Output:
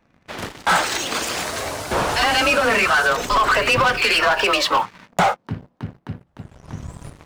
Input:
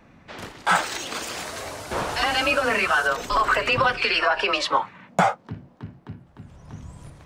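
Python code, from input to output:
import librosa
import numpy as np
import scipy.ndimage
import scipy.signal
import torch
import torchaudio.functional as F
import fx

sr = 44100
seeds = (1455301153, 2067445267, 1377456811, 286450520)

y = fx.leveller(x, sr, passes=3)
y = y * librosa.db_to_amplitude(-4.0)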